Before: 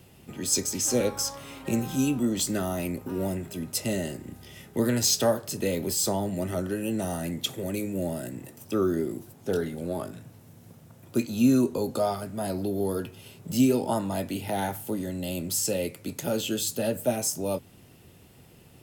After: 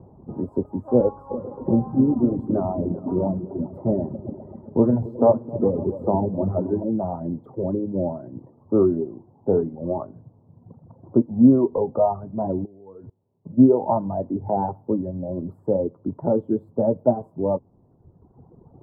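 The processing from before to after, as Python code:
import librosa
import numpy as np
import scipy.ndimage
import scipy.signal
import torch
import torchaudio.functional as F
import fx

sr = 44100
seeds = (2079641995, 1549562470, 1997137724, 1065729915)

y = fx.echo_opening(x, sr, ms=131, hz=200, octaves=2, feedback_pct=70, wet_db=-6, at=(1.29, 6.84), fade=0.02)
y = fx.level_steps(y, sr, step_db=22, at=(12.64, 13.57), fade=0.02)
y = fx.dereverb_blind(y, sr, rt60_s=1.5)
y = scipy.signal.sosfilt(scipy.signal.ellip(4, 1.0, 60, 1000.0, 'lowpass', fs=sr, output='sos'), y)
y = y * 10.0 ** (8.5 / 20.0)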